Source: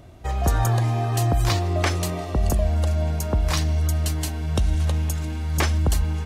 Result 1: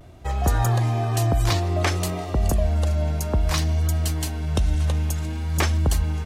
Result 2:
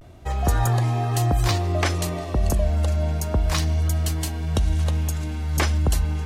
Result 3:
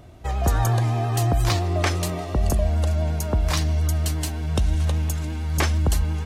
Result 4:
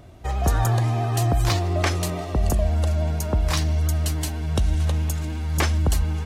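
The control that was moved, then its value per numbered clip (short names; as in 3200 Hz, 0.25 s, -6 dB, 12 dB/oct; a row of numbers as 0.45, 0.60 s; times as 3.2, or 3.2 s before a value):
vibrato, rate: 0.58, 0.3, 8.7, 14 Hz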